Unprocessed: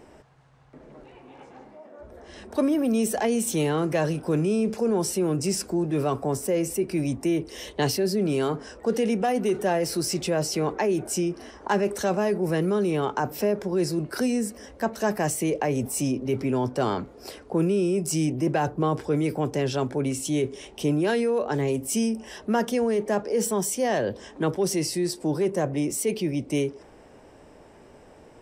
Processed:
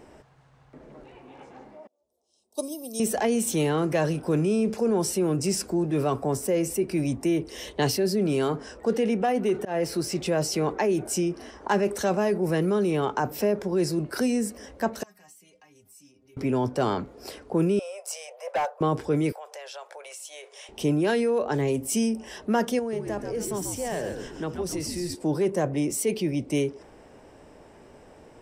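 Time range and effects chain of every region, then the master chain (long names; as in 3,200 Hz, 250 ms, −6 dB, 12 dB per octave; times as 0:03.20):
0:01.87–0:03.00: Butterworth band-reject 1,800 Hz, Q 0.54 + spectral tilt +4.5 dB per octave + expander for the loud parts 2.5 to 1, over −42 dBFS
0:08.93–0:10.26: bass and treble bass −1 dB, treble −6 dB + volume swells 142 ms
0:15.03–0:16.37: guitar amp tone stack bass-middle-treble 5-5-5 + downward compressor 2 to 1, threshold −46 dBFS + stiff-string resonator 93 Hz, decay 0.25 s, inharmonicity 0.008
0:17.79–0:18.81: Butterworth high-pass 500 Hz 96 dB per octave + tilt shelving filter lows +5.5 dB, about 1,100 Hz + hard clipping −21.5 dBFS
0:19.32–0:20.69: Butterworth high-pass 530 Hz 48 dB per octave + downward compressor 3 to 1, threshold −40 dBFS
0:22.79–0:25.15: downward compressor 1.5 to 1, threshold −39 dBFS + echo with shifted repeats 136 ms, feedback 45%, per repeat −81 Hz, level −6 dB
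whole clip: no processing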